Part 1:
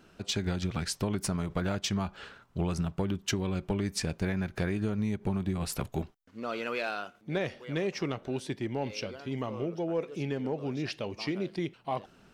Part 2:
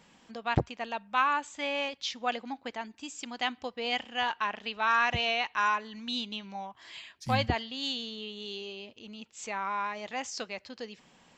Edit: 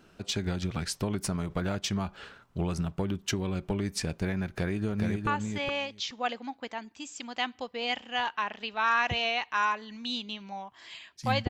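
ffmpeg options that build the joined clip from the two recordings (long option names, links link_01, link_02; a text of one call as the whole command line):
ffmpeg -i cue0.wav -i cue1.wav -filter_complex "[0:a]apad=whole_dur=11.49,atrim=end=11.49,atrim=end=5.272[link_01];[1:a]atrim=start=1.298:end=7.52[link_02];[link_01][link_02]acrossfade=duration=0.004:curve1=hsin:curve2=hsin,asplit=2[link_03][link_04];[link_04]afade=type=in:start_time=4.48:duration=0.01,afade=type=out:start_time=5.27:duration=0.01,aecho=0:1:420|840:0.630957|0.0630957[link_05];[link_03][link_05]amix=inputs=2:normalize=0" out.wav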